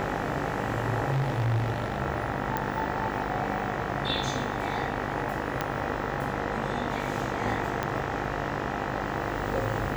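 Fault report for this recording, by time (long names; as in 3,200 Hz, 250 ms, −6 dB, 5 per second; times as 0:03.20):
mains buzz 50 Hz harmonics 39 −34 dBFS
0:01.12–0:01.98: clipping −22.5 dBFS
0:02.57: click −14 dBFS
0:05.61: click −12 dBFS
0:07.83: click −13 dBFS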